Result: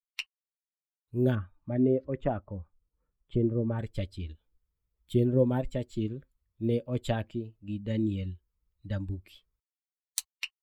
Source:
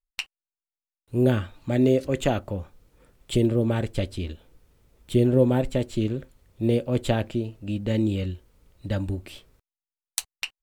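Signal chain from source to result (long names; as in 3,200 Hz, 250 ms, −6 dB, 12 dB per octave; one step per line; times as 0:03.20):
spectral dynamics exaggerated over time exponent 1.5
0:01.35–0:03.79: low-pass filter 1,300 Hz 12 dB per octave
level −3.5 dB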